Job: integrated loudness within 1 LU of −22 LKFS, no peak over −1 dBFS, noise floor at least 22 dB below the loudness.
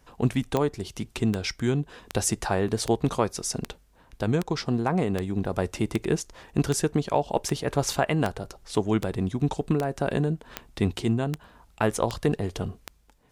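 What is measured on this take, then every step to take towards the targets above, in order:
number of clicks 17; integrated loudness −27.5 LKFS; sample peak −9.5 dBFS; target loudness −22.0 LKFS
→ click removal
level +5.5 dB

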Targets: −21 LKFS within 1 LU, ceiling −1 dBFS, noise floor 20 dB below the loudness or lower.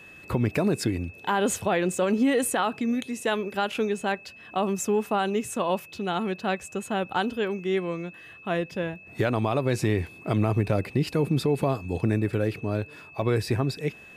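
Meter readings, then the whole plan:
interfering tone 2,600 Hz; level of the tone −46 dBFS; integrated loudness −27.0 LKFS; sample peak −11.5 dBFS; target loudness −21.0 LKFS
→ notch filter 2,600 Hz, Q 30
level +6 dB

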